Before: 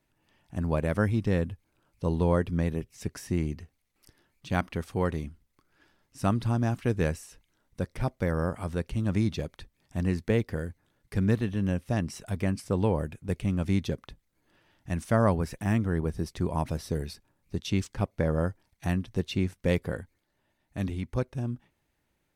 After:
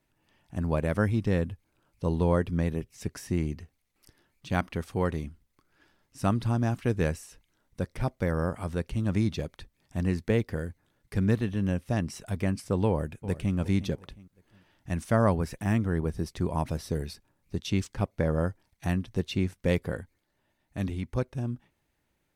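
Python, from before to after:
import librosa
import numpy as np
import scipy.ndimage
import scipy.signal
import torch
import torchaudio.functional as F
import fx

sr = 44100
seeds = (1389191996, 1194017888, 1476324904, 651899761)

y = fx.echo_throw(x, sr, start_s=12.87, length_s=0.68, ms=360, feedback_pct=35, wet_db=-14.5)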